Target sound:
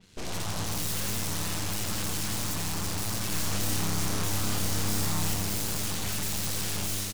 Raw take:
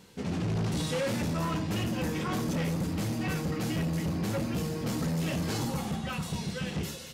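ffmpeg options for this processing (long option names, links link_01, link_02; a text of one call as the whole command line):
ffmpeg -i in.wav -filter_complex "[0:a]lowpass=9000,equalizer=frequency=630:width_type=o:width=2.3:gain=-13,alimiter=level_in=10.5dB:limit=-24dB:level=0:latency=1:release=17,volume=-10.5dB,dynaudnorm=framelen=110:gausssize=5:maxgain=11.5dB,aeval=exprs='0.0708*(cos(1*acos(clip(val(0)/0.0708,-1,1)))-cos(1*PI/2))+0.0178*(cos(4*acos(clip(val(0)/0.0708,-1,1)))-cos(4*PI/2))+0.0355*(cos(8*acos(clip(val(0)/0.0708,-1,1)))-cos(8*PI/2))':channel_layout=same,asoftclip=type=tanh:threshold=-29.5dB,asettb=1/sr,asplit=3[link_01][link_02][link_03];[link_01]atrim=end=3.294[link_04];[link_02]atrim=start=3.29:end=5.34,asetpts=PTS-STARTPTS,afade=type=in:duration=0.004:curve=qsin,afade=type=out:start_time=2.046:duration=0.004:curve=qsin,asplit=2[link_05][link_06];[link_06]adelay=30,volume=-3dB[link_07];[link_05][link_07]amix=inputs=2:normalize=0,atrim=end_sample=90405[link_08];[link_03]atrim=start=5.336[link_09];[link_04][link_08]acrossfade=duration=0.004:curve1=hsin:curve2=qsin[link_10];[link_10][link_09]acrossfade=duration=0.004:curve1=qsin:curve2=hsin,asplit=8[link_11][link_12][link_13][link_14][link_15][link_16][link_17][link_18];[link_12]adelay=86,afreqshift=-100,volume=-7dB[link_19];[link_13]adelay=172,afreqshift=-200,volume=-11.9dB[link_20];[link_14]adelay=258,afreqshift=-300,volume=-16.8dB[link_21];[link_15]adelay=344,afreqshift=-400,volume=-21.6dB[link_22];[link_16]adelay=430,afreqshift=-500,volume=-26.5dB[link_23];[link_17]adelay=516,afreqshift=-600,volume=-31.4dB[link_24];[link_18]adelay=602,afreqshift=-700,volume=-36.3dB[link_25];[link_11][link_19][link_20][link_21][link_22][link_23][link_24][link_25]amix=inputs=8:normalize=0,adynamicequalizer=threshold=0.00224:dfrequency=4400:dqfactor=0.7:tfrequency=4400:tqfactor=0.7:attack=5:release=100:ratio=0.375:range=3:mode=boostabove:tftype=highshelf" out.wav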